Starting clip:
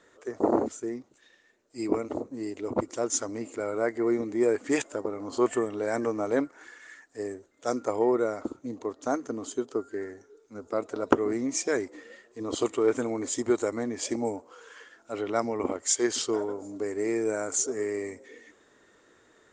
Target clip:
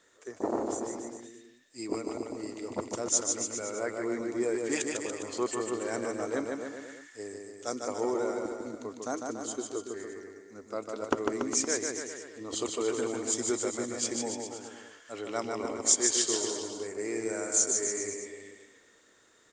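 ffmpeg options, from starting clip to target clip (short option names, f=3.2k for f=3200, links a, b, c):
-af "highshelf=f=2.8k:g=11.5,aecho=1:1:150|285|406.5|515.8|614.3:0.631|0.398|0.251|0.158|0.1,volume=-7.5dB"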